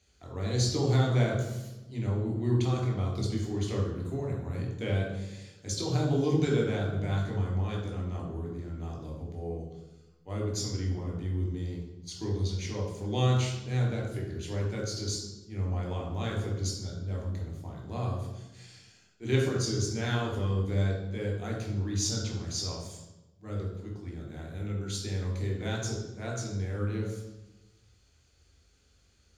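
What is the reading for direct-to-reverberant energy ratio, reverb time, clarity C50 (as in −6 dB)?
−1.5 dB, 1.1 s, 3.5 dB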